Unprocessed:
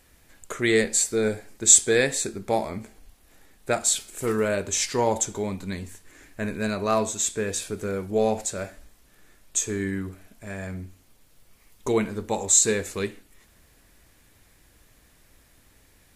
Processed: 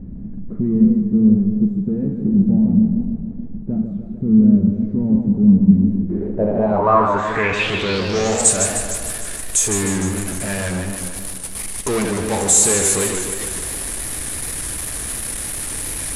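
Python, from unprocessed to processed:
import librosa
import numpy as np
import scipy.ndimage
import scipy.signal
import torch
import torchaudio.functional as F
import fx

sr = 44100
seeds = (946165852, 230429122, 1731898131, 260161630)

y = fx.power_curve(x, sr, exponent=0.35)
y = fx.filter_sweep_lowpass(y, sr, from_hz=210.0, to_hz=10000.0, start_s=5.74, end_s=8.58, q=7.4)
y = fx.echo_warbled(y, sr, ms=152, feedback_pct=62, rate_hz=2.8, cents=150, wet_db=-6.0)
y = F.gain(torch.from_numpy(y), -9.5).numpy()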